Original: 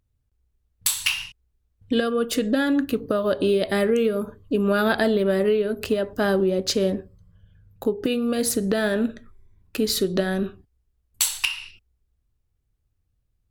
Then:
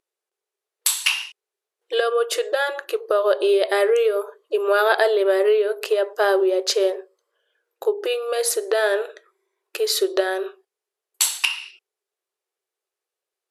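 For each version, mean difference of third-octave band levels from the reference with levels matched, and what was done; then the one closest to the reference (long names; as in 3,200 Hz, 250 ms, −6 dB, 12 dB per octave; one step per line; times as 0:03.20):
7.0 dB: dynamic equaliser 890 Hz, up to +4 dB, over −37 dBFS, Q 1.1
linear-phase brick-wall band-pass 340–13,000 Hz
level +2.5 dB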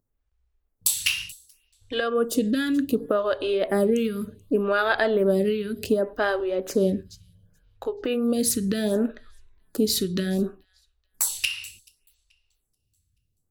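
4.0 dB: delay with a high-pass on its return 432 ms, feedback 32%, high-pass 4,600 Hz, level −21.5 dB
phaser with staggered stages 0.67 Hz
level +1.5 dB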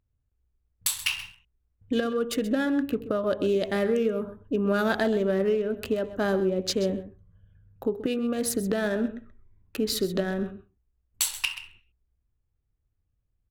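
2.5 dB: adaptive Wiener filter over 9 samples
on a send: single-tap delay 130 ms −14.5 dB
on the sum: level −4 dB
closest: third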